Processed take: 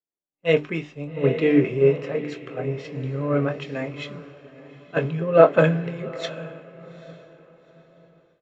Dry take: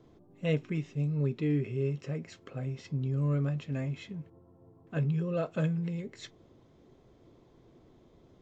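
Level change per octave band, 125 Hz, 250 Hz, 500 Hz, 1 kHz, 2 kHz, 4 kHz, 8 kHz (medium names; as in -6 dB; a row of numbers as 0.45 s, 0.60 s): +2.5 dB, +8.0 dB, +16.5 dB, +19.5 dB, +15.5 dB, +12.0 dB, no reading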